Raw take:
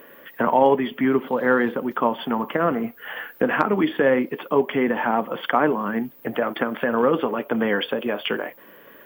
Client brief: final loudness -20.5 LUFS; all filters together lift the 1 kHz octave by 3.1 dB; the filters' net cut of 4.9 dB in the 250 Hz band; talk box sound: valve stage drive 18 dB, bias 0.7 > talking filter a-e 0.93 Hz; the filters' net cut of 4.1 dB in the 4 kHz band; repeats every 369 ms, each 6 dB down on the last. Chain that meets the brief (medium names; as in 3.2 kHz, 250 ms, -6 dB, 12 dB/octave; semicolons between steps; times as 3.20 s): peaking EQ 250 Hz -6 dB; peaking EQ 1 kHz +4.5 dB; peaking EQ 4 kHz -6.5 dB; feedback delay 369 ms, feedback 50%, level -6 dB; valve stage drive 18 dB, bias 0.7; talking filter a-e 0.93 Hz; trim +15.5 dB